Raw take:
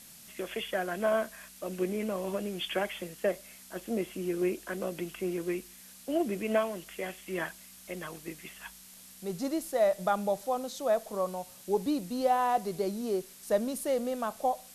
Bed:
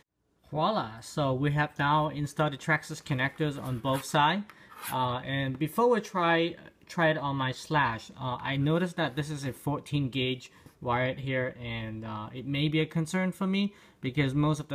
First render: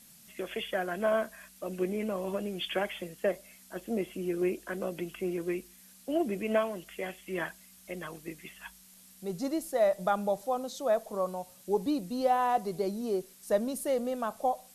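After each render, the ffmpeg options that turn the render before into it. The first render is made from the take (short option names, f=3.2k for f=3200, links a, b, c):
-af "afftdn=nr=6:nf=-52"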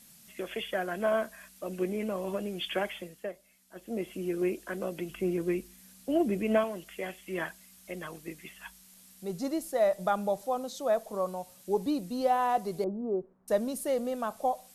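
-filter_complex "[0:a]asettb=1/sr,asplit=3[a][b][c];[a]atrim=end=5.094[d];[b]atrim=start=5.09:end=6.64,asetpts=PTS-STARTPTS,afade=t=in:d=0.004:c=qsin,afade=t=out:st=1.546:d=0.004:c=qsin,lowshelf=f=290:g=7[e];[c]atrim=start=6.636[f];[d][e]acrossfade=d=0.004:c1=hsin:c2=qsin[g];[g][f]acrossfade=d=0.004:c1=qsin:c2=hsin,asettb=1/sr,asplit=3[h][i][j];[h]atrim=end=12.844[k];[i]atrim=start=12.84:end=13.48,asetpts=PTS-STARTPTS,afade=t=in:d=0.004:c=qsin,afade=t=out:st=0.636:d=0.004:c=qsin,lowpass=f=1.1k:w=0.5412,lowpass=f=1.1k:w=1.3066[l];[j]atrim=start=13.476[m];[k][l]acrossfade=d=0.004:c1=hsin:c2=qsin[n];[n][m]acrossfade=d=0.004:c1=qsin:c2=hsin,asplit=3[o][p][q];[o]atrim=end=3.33,asetpts=PTS-STARTPTS,afade=t=out:st=2.88:d=0.45:silence=0.281838[r];[p]atrim=start=3.33:end=3.67,asetpts=PTS-STARTPTS,volume=-11dB[s];[q]atrim=start=3.67,asetpts=PTS-STARTPTS,afade=t=in:d=0.45:silence=0.281838[t];[r][s][t]concat=n=3:v=0:a=1"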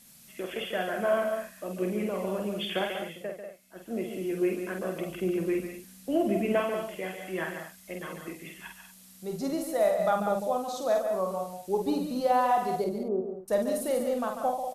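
-filter_complex "[0:a]asplit=2[a][b];[b]adelay=48,volume=-5dB[c];[a][c]amix=inputs=2:normalize=0,aecho=1:1:142.9|192.4:0.398|0.316"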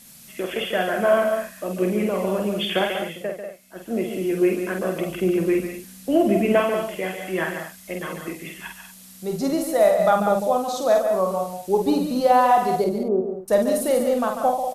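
-af "volume=8dB"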